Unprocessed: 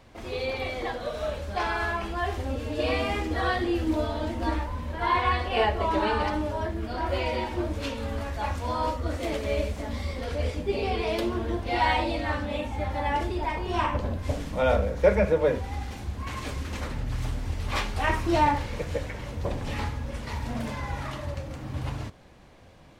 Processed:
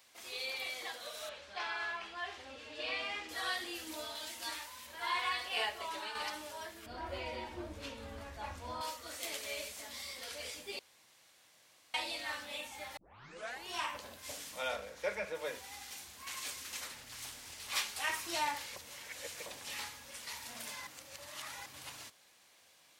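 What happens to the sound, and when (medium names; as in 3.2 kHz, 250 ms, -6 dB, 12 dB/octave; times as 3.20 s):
1.29–3.29 s: low-pass 3.6 kHz
4.15–4.87 s: tilt shelf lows -4.5 dB, about 1.5 kHz
5.59–6.15 s: fade out equal-power, to -7.5 dB
6.86–8.81 s: tilt EQ -4.5 dB/octave
10.79–11.94 s: room tone
12.97 s: tape start 0.69 s
14.67–15.34 s: low-pass 5.1 kHz -> 3.1 kHz 6 dB/octave
16.96–17.72 s: loudspeaker Doppler distortion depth 0.28 ms
18.76–19.46 s: reverse
20.87–21.66 s: reverse
whole clip: differentiator; trim +4.5 dB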